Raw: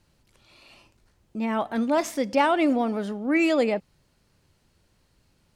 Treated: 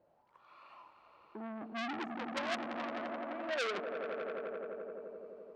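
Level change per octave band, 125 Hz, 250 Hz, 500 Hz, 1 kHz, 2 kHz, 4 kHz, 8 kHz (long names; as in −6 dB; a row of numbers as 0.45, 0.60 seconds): can't be measured, −18.5 dB, −13.0 dB, −13.0 dB, −9.5 dB, −7.5 dB, −15.0 dB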